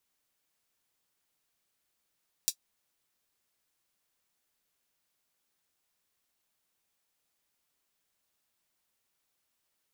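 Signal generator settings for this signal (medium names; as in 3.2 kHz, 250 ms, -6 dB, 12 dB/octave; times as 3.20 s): closed hi-hat, high-pass 4.8 kHz, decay 0.08 s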